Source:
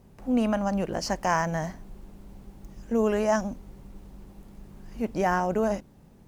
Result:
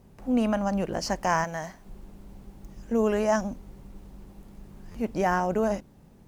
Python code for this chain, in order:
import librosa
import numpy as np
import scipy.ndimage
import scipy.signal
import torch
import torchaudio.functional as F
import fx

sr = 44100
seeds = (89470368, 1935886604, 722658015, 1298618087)

y = fx.low_shelf(x, sr, hz=420.0, db=-10.0, at=(1.44, 1.86))
y = fx.buffer_glitch(y, sr, at_s=(4.91,), block=512, repeats=2)